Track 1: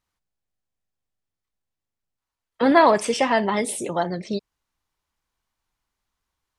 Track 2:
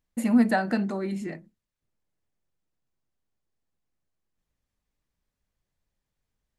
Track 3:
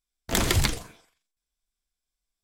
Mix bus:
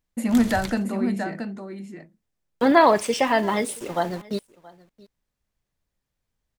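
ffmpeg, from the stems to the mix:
ffmpeg -i stem1.wav -i stem2.wav -i stem3.wav -filter_complex "[0:a]agate=range=-33dB:threshold=-24dB:ratio=3:detection=peak,aeval=exprs='val(0)*gte(abs(val(0)),0.015)':channel_layout=same,volume=-0.5dB,asplit=2[link_01][link_02];[link_02]volume=-23dB[link_03];[1:a]volume=1dB,asplit=2[link_04][link_05];[link_05]volume=-7dB[link_06];[2:a]volume=-10.5dB[link_07];[link_03][link_06]amix=inputs=2:normalize=0,aecho=0:1:676:1[link_08];[link_01][link_04][link_07][link_08]amix=inputs=4:normalize=0" out.wav

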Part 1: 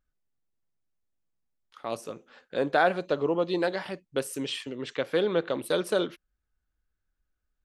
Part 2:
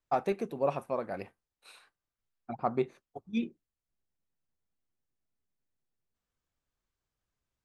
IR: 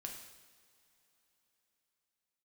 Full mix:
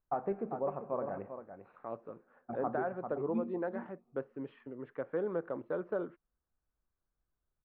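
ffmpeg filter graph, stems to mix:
-filter_complex "[0:a]volume=-8.5dB[link_01];[1:a]volume=-5dB,asplit=3[link_02][link_03][link_04];[link_03]volume=-5.5dB[link_05];[link_04]volume=-7.5dB[link_06];[2:a]atrim=start_sample=2205[link_07];[link_05][link_07]afir=irnorm=-1:irlink=0[link_08];[link_06]aecho=0:1:395:1[link_09];[link_01][link_02][link_08][link_09]amix=inputs=4:normalize=0,lowpass=frequency=1500:width=0.5412,lowpass=frequency=1500:width=1.3066,alimiter=limit=-24dB:level=0:latency=1:release=175"

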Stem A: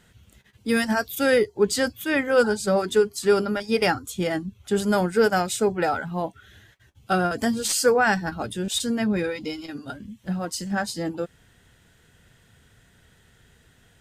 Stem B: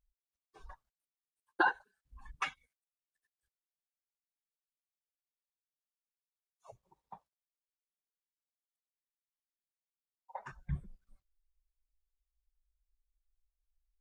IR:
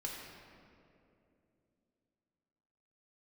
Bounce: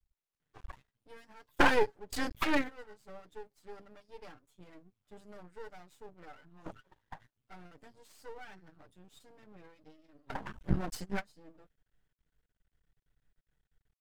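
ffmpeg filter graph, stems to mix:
-filter_complex "[0:a]aecho=1:1:6.7:0.81,adelay=400,volume=-4.5dB[link_01];[1:a]acontrast=52,volume=2dB,asplit=2[link_02][link_03];[link_03]apad=whole_len=635416[link_04];[link_01][link_04]sidechaingate=range=-22dB:threshold=-53dB:ratio=16:detection=peak[link_05];[link_05][link_02]amix=inputs=2:normalize=0,highshelf=frequency=3700:gain=-10.5,aeval=exprs='max(val(0),0)':channel_layout=same"

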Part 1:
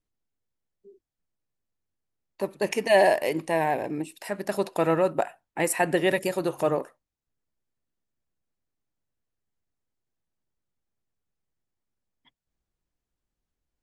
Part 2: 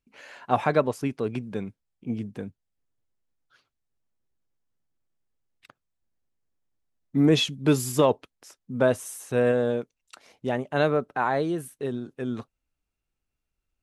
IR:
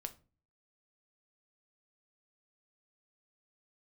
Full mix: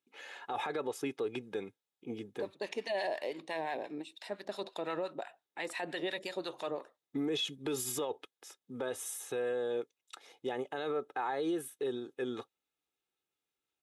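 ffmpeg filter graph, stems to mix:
-filter_complex "[0:a]lowpass=6500,acrossover=split=940[link_01][link_02];[link_01]aeval=exprs='val(0)*(1-0.7/2+0.7/2*cos(2*PI*5.8*n/s))':channel_layout=same[link_03];[link_02]aeval=exprs='val(0)*(1-0.7/2-0.7/2*cos(2*PI*5.8*n/s))':channel_layout=same[link_04];[link_03][link_04]amix=inputs=2:normalize=0,volume=-6.5dB[link_05];[1:a]equalizer=frequency=4100:width=2.4:gain=-9.5,aecho=1:1:2.4:0.56,volume=-3.5dB[link_06];[link_05][link_06]amix=inputs=2:normalize=0,highpass=260,equalizer=frequency=3700:width_type=o:width=0.39:gain=14,alimiter=level_in=3dB:limit=-24dB:level=0:latency=1:release=61,volume=-3dB"

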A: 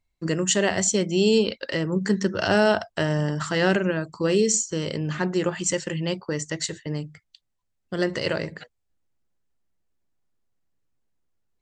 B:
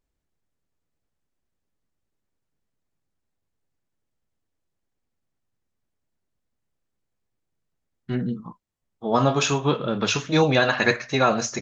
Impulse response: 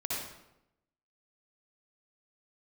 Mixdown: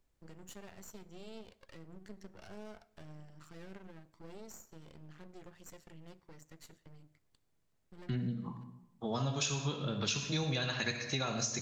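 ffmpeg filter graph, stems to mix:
-filter_complex "[0:a]lowshelf=frequency=140:gain=9,acompressor=threshold=-46dB:ratio=1.5,aeval=exprs='max(val(0),0)':channel_layout=same,volume=-16.5dB,asplit=2[link_01][link_02];[link_02]volume=-24dB[link_03];[1:a]acrossover=split=150|3000[link_04][link_05][link_06];[link_05]acompressor=threshold=-56dB:ratio=1.5[link_07];[link_04][link_07][link_06]amix=inputs=3:normalize=0,volume=0dB,asplit=3[link_08][link_09][link_10];[link_09]volume=-10dB[link_11];[link_10]apad=whole_len=512051[link_12];[link_01][link_12]sidechaincompress=threshold=-44dB:ratio=8:attack=16:release=628[link_13];[2:a]atrim=start_sample=2205[link_14];[link_03][link_11]amix=inputs=2:normalize=0[link_15];[link_15][link_14]afir=irnorm=-1:irlink=0[link_16];[link_13][link_08][link_16]amix=inputs=3:normalize=0,acompressor=threshold=-34dB:ratio=3"

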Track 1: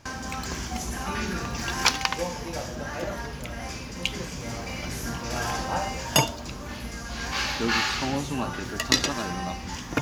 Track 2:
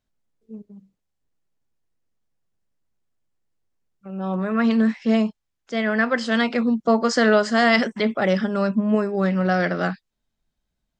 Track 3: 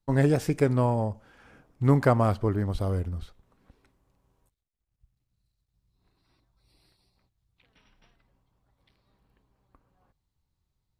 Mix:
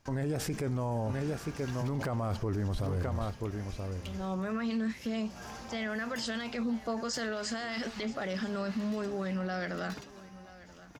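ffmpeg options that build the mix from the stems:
ffmpeg -i stem1.wav -i stem2.wav -i stem3.wav -filter_complex "[0:a]asoftclip=type=tanh:threshold=-20dB,volume=-15dB,asplit=2[link_01][link_02];[link_02]volume=-8.5dB[link_03];[1:a]highshelf=frequency=3500:gain=11,alimiter=limit=-14dB:level=0:latency=1,volume=-9.5dB,asplit=3[link_04][link_05][link_06];[link_05]volume=-20dB[link_07];[2:a]volume=2dB,asplit=2[link_08][link_09];[link_09]volume=-12dB[link_10];[link_06]apad=whole_len=441597[link_11];[link_01][link_11]sidechaincompress=threshold=-38dB:ratio=8:attack=36:release=265[link_12];[link_03][link_07][link_10]amix=inputs=3:normalize=0,aecho=0:1:980:1[link_13];[link_12][link_04][link_08][link_13]amix=inputs=4:normalize=0,alimiter=level_in=2dB:limit=-24dB:level=0:latency=1:release=22,volume=-2dB" out.wav

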